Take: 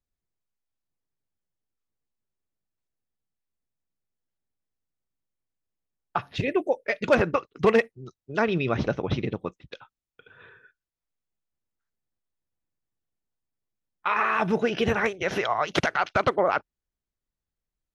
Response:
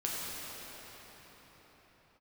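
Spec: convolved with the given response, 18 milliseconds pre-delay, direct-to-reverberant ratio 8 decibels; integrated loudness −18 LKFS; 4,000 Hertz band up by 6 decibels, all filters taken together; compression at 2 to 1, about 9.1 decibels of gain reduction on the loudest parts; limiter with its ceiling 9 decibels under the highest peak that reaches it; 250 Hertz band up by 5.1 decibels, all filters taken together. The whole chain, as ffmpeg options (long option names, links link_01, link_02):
-filter_complex "[0:a]equalizer=frequency=250:width_type=o:gain=6.5,equalizer=frequency=4000:width_type=o:gain=8,acompressor=threshold=-30dB:ratio=2,alimiter=limit=-21dB:level=0:latency=1,asplit=2[link_01][link_02];[1:a]atrim=start_sample=2205,adelay=18[link_03];[link_02][link_03]afir=irnorm=-1:irlink=0,volume=-14dB[link_04];[link_01][link_04]amix=inputs=2:normalize=0,volume=14.5dB"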